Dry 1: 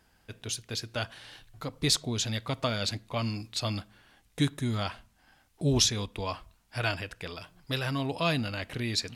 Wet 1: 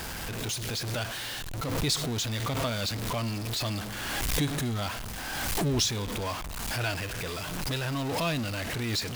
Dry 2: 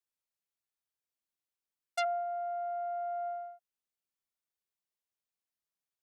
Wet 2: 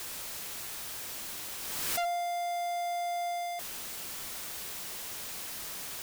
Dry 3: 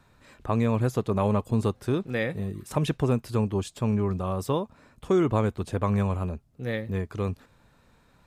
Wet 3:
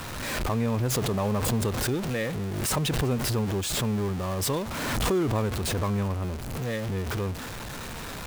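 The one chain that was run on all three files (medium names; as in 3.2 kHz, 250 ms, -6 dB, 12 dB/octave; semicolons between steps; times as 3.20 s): jump at every zero crossing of -26 dBFS; swell ahead of each attack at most 26 dB/s; trim -5 dB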